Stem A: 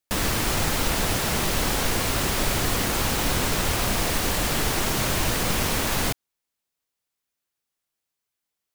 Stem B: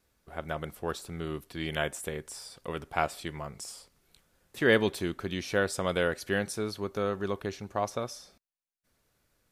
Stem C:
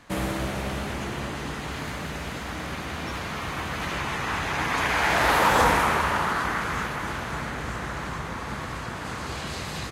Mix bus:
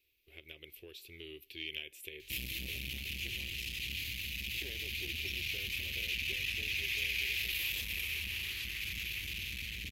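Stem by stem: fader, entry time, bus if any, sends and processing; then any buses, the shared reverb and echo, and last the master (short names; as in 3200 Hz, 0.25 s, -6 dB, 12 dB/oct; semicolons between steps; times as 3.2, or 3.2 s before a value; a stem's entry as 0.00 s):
off
-3.0 dB, 0.00 s, bus A, no send, tone controls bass -9 dB, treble -9 dB; compressor 3:1, threshold -38 dBFS, peak gain reduction 14.5 dB
-3.0 dB, 2.20 s, bus A, no send, bell 440 Hz -14 dB 2.5 oct
bus A: 0.0 dB, high shelf 9200 Hz +11.5 dB; compressor, threshold -34 dBFS, peak gain reduction 10.5 dB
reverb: off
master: EQ curve 100 Hz 0 dB, 190 Hz -18 dB, 370 Hz -2 dB, 750 Hz -27 dB, 1400 Hz -26 dB, 2500 Hz +12 dB, 8900 Hz -8 dB, 13000 Hz +6 dB; core saturation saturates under 850 Hz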